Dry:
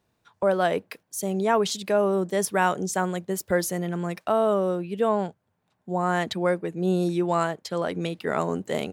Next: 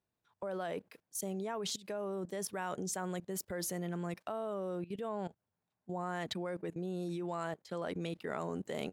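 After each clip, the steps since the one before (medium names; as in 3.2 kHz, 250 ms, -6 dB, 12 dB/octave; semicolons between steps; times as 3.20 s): level held to a coarse grid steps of 17 dB; trim -4 dB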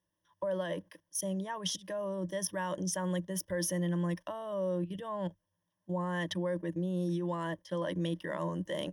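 rippled EQ curve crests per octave 1.2, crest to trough 16 dB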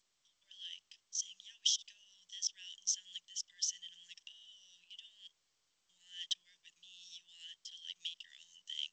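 elliptic high-pass 2.8 kHz, stop band 60 dB; trim +5 dB; G.722 64 kbps 16 kHz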